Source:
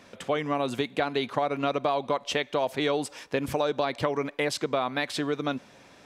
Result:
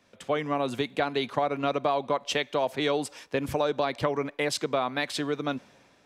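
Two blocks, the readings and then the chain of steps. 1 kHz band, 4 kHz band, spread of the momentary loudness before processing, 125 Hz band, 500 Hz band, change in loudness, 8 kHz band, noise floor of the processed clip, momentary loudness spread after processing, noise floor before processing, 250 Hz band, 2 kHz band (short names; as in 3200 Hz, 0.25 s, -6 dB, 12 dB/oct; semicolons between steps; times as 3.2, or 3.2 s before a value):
0.0 dB, +0.5 dB, 4 LU, -0.5 dB, 0.0 dB, 0.0 dB, +1.0 dB, -61 dBFS, 4 LU, -54 dBFS, -0.5 dB, -0.5 dB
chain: three-band expander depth 40%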